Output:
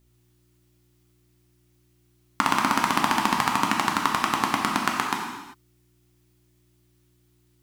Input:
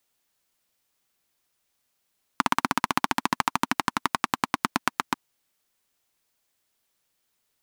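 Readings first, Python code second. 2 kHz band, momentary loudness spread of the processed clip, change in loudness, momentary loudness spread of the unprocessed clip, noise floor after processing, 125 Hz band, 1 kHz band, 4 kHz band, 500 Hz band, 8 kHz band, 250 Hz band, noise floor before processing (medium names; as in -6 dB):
+3.0 dB, 6 LU, +3.5 dB, 4 LU, -64 dBFS, +3.5 dB, +3.5 dB, +3.5 dB, +3.5 dB, +3.5 dB, +3.5 dB, -76 dBFS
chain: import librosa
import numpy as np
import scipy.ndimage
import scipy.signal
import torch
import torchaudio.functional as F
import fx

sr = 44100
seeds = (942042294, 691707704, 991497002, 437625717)

y = fx.dmg_buzz(x, sr, base_hz=60.0, harmonics=6, level_db=-63.0, tilt_db=-5, odd_only=False)
y = fx.rev_gated(y, sr, seeds[0], gate_ms=420, shape='falling', drr_db=-1.0)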